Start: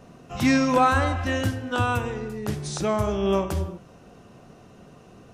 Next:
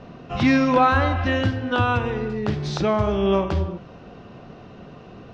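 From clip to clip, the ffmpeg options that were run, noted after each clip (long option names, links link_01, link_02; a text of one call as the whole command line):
ffmpeg -i in.wav -filter_complex "[0:a]lowpass=frequency=4500:width=0.5412,lowpass=frequency=4500:width=1.3066,asplit=2[link_01][link_02];[link_02]acompressor=threshold=-29dB:ratio=6,volume=1.5dB[link_03];[link_01][link_03]amix=inputs=2:normalize=0" out.wav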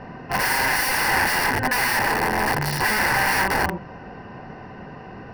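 ffmpeg -i in.wav -af "aeval=exprs='(mod(11.9*val(0)+1,2)-1)/11.9':channel_layout=same,acontrast=27,superequalizer=9b=2.51:11b=2.82:13b=0.316:15b=0.316,volume=-2.5dB" out.wav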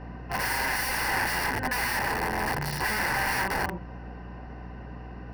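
ffmpeg -i in.wav -af "aeval=exprs='val(0)+0.0224*(sin(2*PI*60*n/s)+sin(2*PI*2*60*n/s)/2+sin(2*PI*3*60*n/s)/3+sin(2*PI*4*60*n/s)/4+sin(2*PI*5*60*n/s)/5)':channel_layout=same,volume=-7dB" out.wav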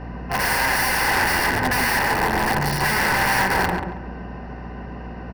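ffmpeg -i in.wav -filter_complex "[0:a]aeval=exprs='0.0841*(abs(mod(val(0)/0.0841+3,4)-2)-1)':channel_layout=same,asplit=2[link_01][link_02];[link_02]adelay=138,lowpass=frequency=1900:poles=1,volume=-3.5dB,asplit=2[link_03][link_04];[link_04]adelay=138,lowpass=frequency=1900:poles=1,volume=0.36,asplit=2[link_05][link_06];[link_06]adelay=138,lowpass=frequency=1900:poles=1,volume=0.36,asplit=2[link_07][link_08];[link_08]adelay=138,lowpass=frequency=1900:poles=1,volume=0.36,asplit=2[link_09][link_10];[link_10]adelay=138,lowpass=frequency=1900:poles=1,volume=0.36[link_11];[link_01][link_03][link_05][link_07][link_09][link_11]amix=inputs=6:normalize=0,volume=7dB" out.wav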